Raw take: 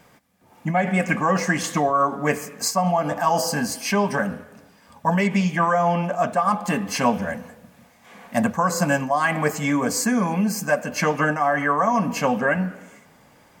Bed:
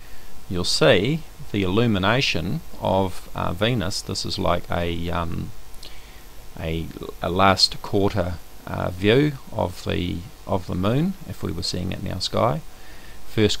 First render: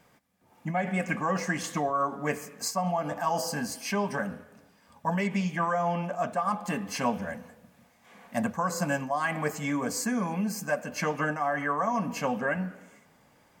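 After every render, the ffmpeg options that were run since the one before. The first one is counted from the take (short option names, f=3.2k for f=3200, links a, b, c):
-af "volume=-8dB"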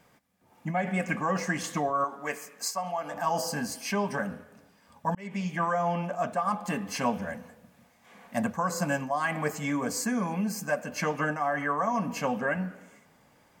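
-filter_complex "[0:a]asettb=1/sr,asplit=3[a][b][c];[a]atrim=end=2.044[d];[b]atrim=start=2.04:end=3.14,asetpts=PTS-STARTPTS,afade=t=in:d=0.004:c=qsin,afade=t=out:st=1.096:d=0.004:c=qsin,highpass=f=710:p=1[e];[c]atrim=start=3.136[f];[d][e]acrossfade=d=0.004:c1=hsin:c2=qsin[g];[g][f]acrossfade=d=0.004:c1=qsin:c2=hsin,asplit=2[h][i];[h]atrim=end=5.15,asetpts=PTS-STARTPTS,afade=t=out:st=5.146:d=0.004:c=hsin[j];[i]atrim=start=5.15,asetpts=PTS-STARTPTS,afade=t=in:d=0.55:c=qsin[k];[j][k]concat=n=2:v=0:a=1"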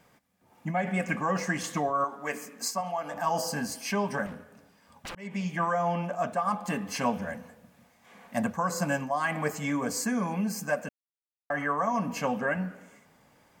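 -filter_complex "[0:a]asettb=1/sr,asplit=3[a][b][c];[a]atrim=end=2.344[d];[b]atrim=start=2.34:end=2.81,asetpts=PTS-STARTPTS,afade=t=in:d=0.004:c=qsin,afade=t=out:st=0.466:d=0.004:c=qsin,equalizer=f=250:t=o:w=0.85:g=14[e];[c]atrim=start=2.806[f];[d][e]acrossfade=d=0.004:c1=hsin:c2=qsin[g];[g][f]acrossfade=d=0.004:c1=qsin:c2=hsin,asettb=1/sr,asplit=3[h][i][j];[h]atrim=end=4.264[k];[i]atrim=start=4.26:end=5.16,asetpts=PTS-STARTPTS,afade=t=in:d=0.004:c=qsin,afade=t=out:st=0.896:d=0.004:c=qsin,aeval=exprs='0.02*(abs(mod(val(0)/0.02+3,4)-2)-1)':c=same[l];[j]atrim=start=5.156[m];[k][l]acrossfade=d=0.004:c1=hsin:c2=qsin[n];[n][m]acrossfade=d=0.004:c1=qsin:c2=hsin,asplit=3[o][p][q];[o]atrim=end=10.89,asetpts=PTS-STARTPTS,afade=t=out:st=10.886:d=0.004:c=hsin[r];[p]atrim=start=10.89:end=11.5,asetpts=PTS-STARTPTS,volume=0[s];[q]atrim=start=11.5,asetpts=PTS-STARTPTS,afade=t=in:d=0.004:c=hsin[t];[r][s][t]concat=n=3:v=0:a=1"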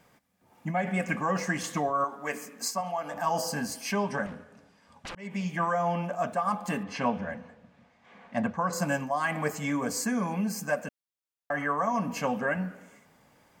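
-filter_complex "[0:a]asettb=1/sr,asplit=3[a][b][c];[a]atrim=end=4.044[d];[b]atrim=start=4.04:end=5.24,asetpts=PTS-STARTPTS,afade=t=in:d=0.004:c=qsin,afade=t=out:st=1.196:d=0.004:c=qsin,lowpass=8k[e];[c]atrim=start=5.236[f];[d][e]acrossfade=d=0.004:c1=hsin:c2=qsin[g];[g][f]acrossfade=d=0.004:c1=qsin:c2=hsin,asettb=1/sr,asplit=3[h][i][j];[h]atrim=end=6.834[k];[i]atrim=start=6.83:end=8.73,asetpts=PTS-STARTPTS,afade=t=in:d=0.004:c=qsin,afade=t=out:st=1.896:d=0.004:c=qsin,lowpass=3.8k[l];[j]atrim=start=8.726[m];[k][l]acrossfade=d=0.004:c1=hsin:c2=qsin[n];[n][m]acrossfade=d=0.004:c1=qsin:c2=hsin"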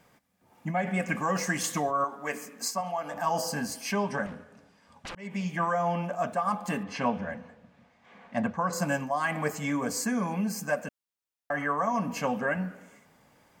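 -filter_complex "[0:a]asettb=1/sr,asplit=3[a][b][c];[a]atrim=end=1.154[d];[b]atrim=start=1.15:end=1.91,asetpts=PTS-STARTPTS,afade=t=in:d=0.004:c=qsin,afade=t=out:st=0.756:d=0.004:c=qsin,aemphasis=mode=production:type=cd[e];[c]atrim=start=1.906[f];[d][e]acrossfade=d=0.004:c1=hsin:c2=qsin[g];[g][f]acrossfade=d=0.004:c1=qsin:c2=hsin"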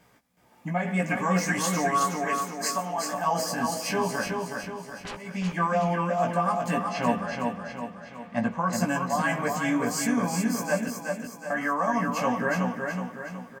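-filter_complex "[0:a]asplit=2[a][b];[b]adelay=17,volume=-3dB[c];[a][c]amix=inputs=2:normalize=0,aecho=1:1:370|740|1110|1480|1850|2220:0.596|0.286|0.137|0.0659|0.0316|0.0152"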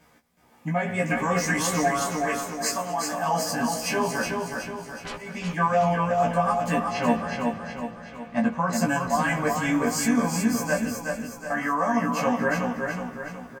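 -filter_complex "[0:a]asplit=2[a][b];[b]adelay=13,volume=-2dB[c];[a][c]amix=inputs=2:normalize=0,asplit=5[d][e][f][g][h];[e]adelay=226,afreqshift=-59,volume=-20dB[i];[f]adelay=452,afreqshift=-118,volume=-26dB[j];[g]adelay=678,afreqshift=-177,volume=-32dB[k];[h]adelay=904,afreqshift=-236,volume=-38.1dB[l];[d][i][j][k][l]amix=inputs=5:normalize=0"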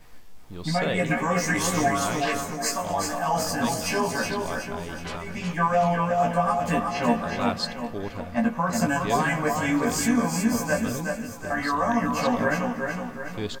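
-filter_complex "[1:a]volume=-13dB[a];[0:a][a]amix=inputs=2:normalize=0"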